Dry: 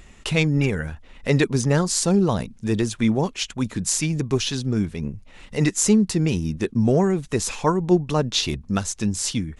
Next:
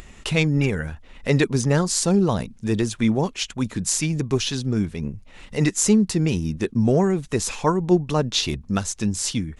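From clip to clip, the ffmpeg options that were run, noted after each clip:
-af "acompressor=mode=upward:threshold=-37dB:ratio=2.5"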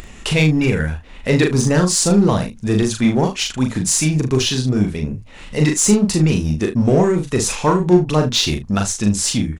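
-filter_complex "[0:a]asplit=2[a][b];[b]asoftclip=type=hard:threshold=-22dB,volume=-5dB[c];[a][c]amix=inputs=2:normalize=0,aecho=1:1:39|75:0.631|0.178,volume=1.5dB"

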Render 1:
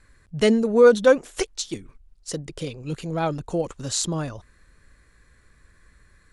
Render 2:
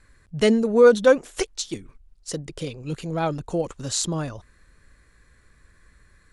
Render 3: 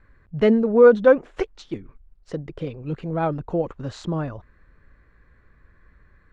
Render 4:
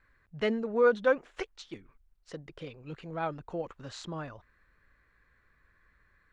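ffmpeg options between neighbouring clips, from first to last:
-af anull
-af "lowpass=1.8k,volume=1.5dB"
-af "tiltshelf=f=850:g=-6.5,volume=-8.5dB"

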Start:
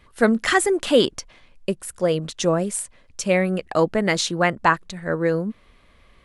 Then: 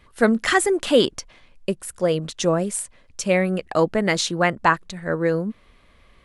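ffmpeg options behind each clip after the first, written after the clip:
-af anull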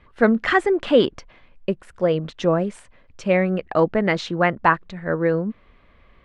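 -af "lowpass=2.6k,volume=1dB"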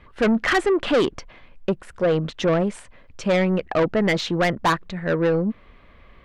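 -af "asoftclip=type=tanh:threshold=-18.5dB,volume=4dB"

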